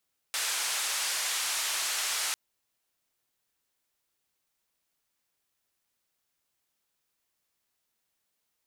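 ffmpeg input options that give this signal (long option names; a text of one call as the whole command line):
ffmpeg -f lavfi -i "anoisesrc=color=white:duration=2:sample_rate=44100:seed=1,highpass=frequency=900,lowpass=frequency=9200,volume=-22dB" out.wav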